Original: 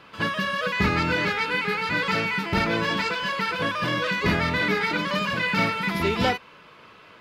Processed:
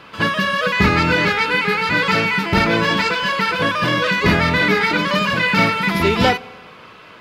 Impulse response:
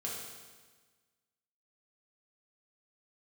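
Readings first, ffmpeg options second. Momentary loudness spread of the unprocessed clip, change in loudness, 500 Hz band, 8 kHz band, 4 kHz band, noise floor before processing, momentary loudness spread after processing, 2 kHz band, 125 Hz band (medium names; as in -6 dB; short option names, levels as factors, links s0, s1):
3 LU, +7.5 dB, +7.5 dB, +7.5 dB, +7.5 dB, -50 dBFS, 3 LU, +7.5 dB, +7.5 dB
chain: -filter_complex "[0:a]asplit=2[s0][s1];[1:a]atrim=start_sample=2205,adelay=85[s2];[s1][s2]afir=irnorm=-1:irlink=0,volume=0.0596[s3];[s0][s3]amix=inputs=2:normalize=0,volume=2.37"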